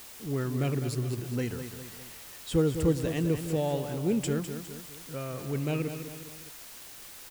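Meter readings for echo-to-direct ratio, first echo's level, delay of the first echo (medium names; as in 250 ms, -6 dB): -8.0 dB, -9.0 dB, 204 ms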